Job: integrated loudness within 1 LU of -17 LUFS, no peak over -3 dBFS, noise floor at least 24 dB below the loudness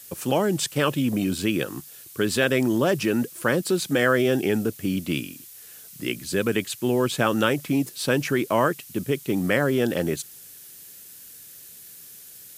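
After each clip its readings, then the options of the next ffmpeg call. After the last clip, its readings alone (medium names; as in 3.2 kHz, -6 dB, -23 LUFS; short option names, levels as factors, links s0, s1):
noise floor -45 dBFS; noise floor target -48 dBFS; loudness -24.0 LUFS; peak level -6.0 dBFS; loudness target -17.0 LUFS
-> -af "afftdn=nr=6:nf=-45"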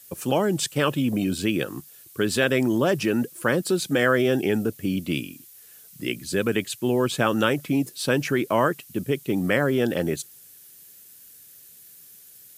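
noise floor -49 dBFS; loudness -24.0 LUFS; peak level -6.5 dBFS; loudness target -17.0 LUFS
-> -af "volume=2.24,alimiter=limit=0.708:level=0:latency=1"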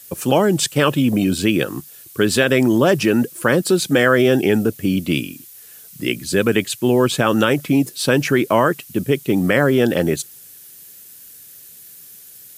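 loudness -17.5 LUFS; peak level -3.0 dBFS; noise floor -42 dBFS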